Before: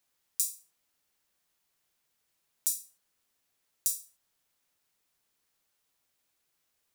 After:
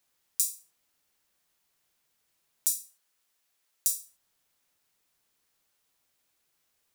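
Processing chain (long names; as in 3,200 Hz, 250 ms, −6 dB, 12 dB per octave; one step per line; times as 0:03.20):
0:02.72–0:03.95: low-shelf EQ 440 Hz −9.5 dB
level +2.5 dB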